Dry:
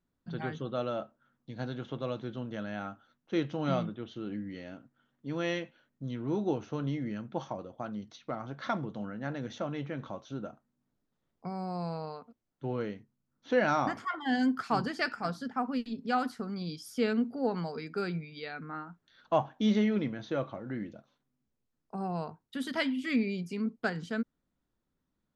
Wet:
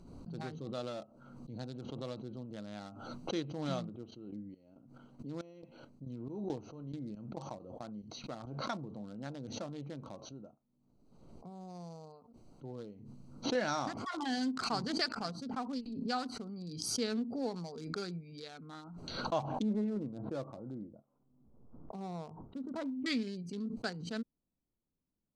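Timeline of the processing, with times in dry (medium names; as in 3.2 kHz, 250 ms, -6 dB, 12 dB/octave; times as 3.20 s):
3.89–8.74 s: square tremolo 2.3 Hz
10.20–13.55 s: gain -4 dB
19.62–23.06 s: low-pass 1.4 kHz 24 dB/octave
whole clip: local Wiener filter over 25 samples; high-order bell 6 kHz +13 dB; swell ahead of each attack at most 42 dB/s; trim -7 dB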